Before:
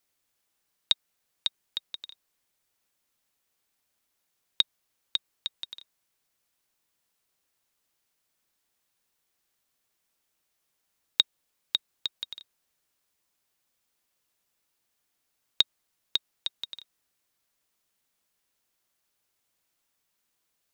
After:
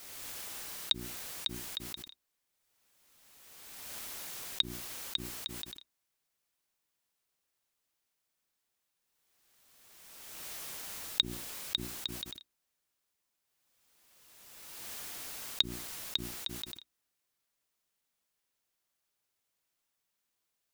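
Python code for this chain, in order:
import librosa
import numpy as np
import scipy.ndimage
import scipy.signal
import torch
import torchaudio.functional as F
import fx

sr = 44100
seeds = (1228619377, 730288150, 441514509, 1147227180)

y = fx.hum_notches(x, sr, base_hz=60, count=6)
y = fx.pre_swell(y, sr, db_per_s=27.0)
y = F.gain(torch.from_numpy(y), -5.5).numpy()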